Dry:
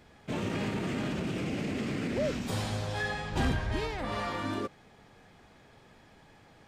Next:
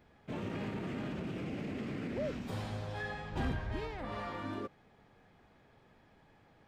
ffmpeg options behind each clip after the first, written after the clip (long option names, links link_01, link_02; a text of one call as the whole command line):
ffmpeg -i in.wav -af "equalizer=frequency=8300:width=0.47:gain=-9.5,volume=-6dB" out.wav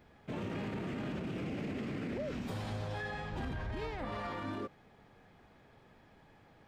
ffmpeg -i in.wav -af "alimiter=level_in=9.5dB:limit=-24dB:level=0:latency=1:release=26,volume=-9.5dB,volume=2.5dB" out.wav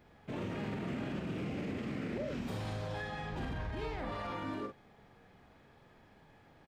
ffmpeg -i in.wav -filter_complex "[0:a]asplit=2[link_01][link_02];[link_02]adelay=45,volume=-5dB[link_03];[link_01][link_03]amix=inputs=2:normalize=0,volume=-1dB" out.wav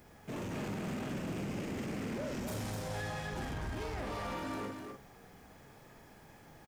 ffmpeg -i in.wav -af "aexciter=amount=4.9:drive=2.2:freq=5300,asoftclip=type=tanh:threshold=-39.5dB,aecho=1:1:251:0.531,volume=3.5dB" out.wav